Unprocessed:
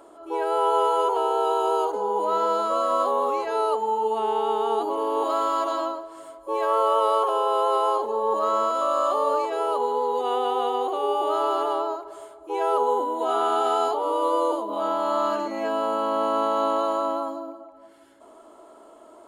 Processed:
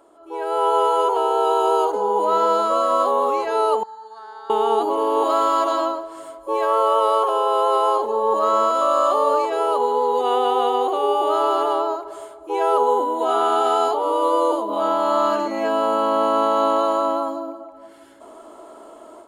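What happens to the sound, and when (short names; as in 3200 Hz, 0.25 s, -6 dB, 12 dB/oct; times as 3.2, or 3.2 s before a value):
3.83–4.5 double band-pass 2700 Hz, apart 1.5 oct
whole clip: AGC gain up to 11.5 dB; gain -4.5 dB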